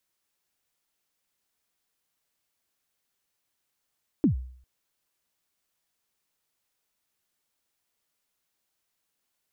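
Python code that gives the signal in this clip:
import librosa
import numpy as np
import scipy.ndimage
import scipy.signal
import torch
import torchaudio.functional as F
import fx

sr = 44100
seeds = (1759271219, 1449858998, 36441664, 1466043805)

y = fx.drum_kick(sr, seeds[0], length_s=0.4, level_db=-15.0, start_hz=340.0, end_hz=63.0, sweep_ms=112.0, decay_s=0.57, click=False)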